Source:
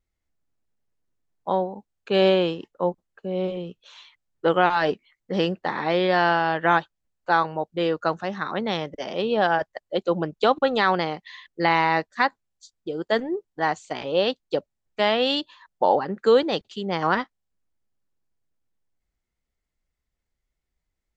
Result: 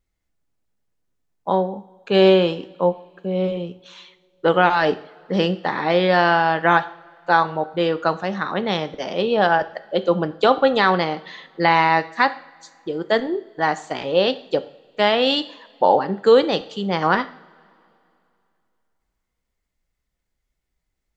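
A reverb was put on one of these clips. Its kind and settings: two-slope reverb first 0.52 s, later 2.7 s, from -21 dB, DRR 10.5 dB; trim +3.5 dB

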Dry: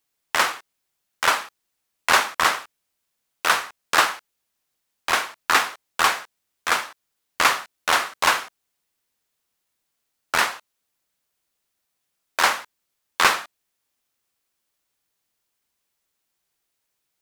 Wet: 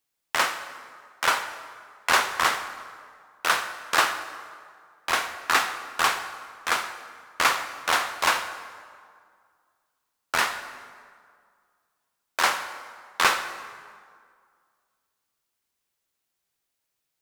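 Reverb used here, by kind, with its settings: plate-style reverb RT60 2 s, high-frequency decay 0.65×, DRR 8.5 dB; trim -3.5 dB

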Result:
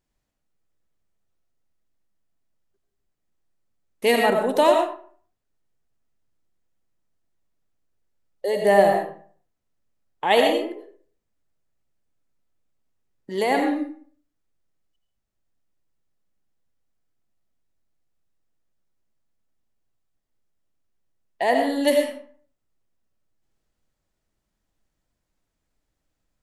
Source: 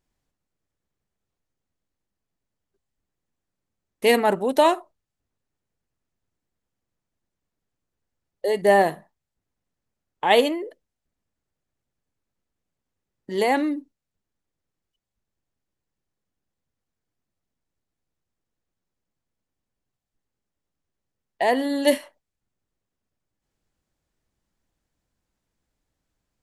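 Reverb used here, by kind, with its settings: algorithmic reverb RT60 0.5 s, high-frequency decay 0.65×, pre-delay 50 ms, DRR 2.5 dB; trim -1.5 dB

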